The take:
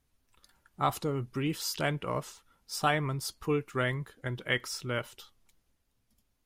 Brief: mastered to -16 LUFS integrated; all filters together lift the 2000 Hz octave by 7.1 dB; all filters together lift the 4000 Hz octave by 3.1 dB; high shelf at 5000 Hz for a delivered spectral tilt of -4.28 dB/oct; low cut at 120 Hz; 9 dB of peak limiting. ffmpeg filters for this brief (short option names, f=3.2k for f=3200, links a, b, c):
-af "highpass=120,equalizer=f=2k:t=o:g=8.5,equalizer=f=4k:t=o:g=4,highshelf=f=5k:g=-6,volume=16.5dB,alimiter=limit=-0.5dB:level=0:latency=1"